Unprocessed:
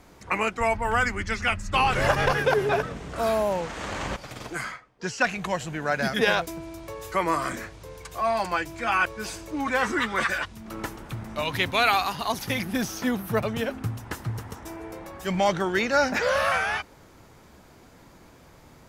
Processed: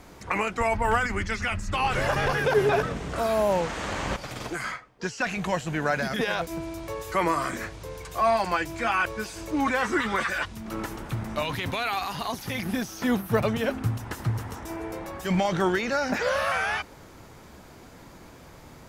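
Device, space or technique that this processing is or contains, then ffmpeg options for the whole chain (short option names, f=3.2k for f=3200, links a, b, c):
de-esser from a sidechain: -filter_complex "[0:a]asplit=2[a][b];[b]highpass=5.5k,apad=whole_len=832935[c];[a][c]sidechaincompress=threshold=-46dB:ratio=4:attack=1:release=20,volume=4dB"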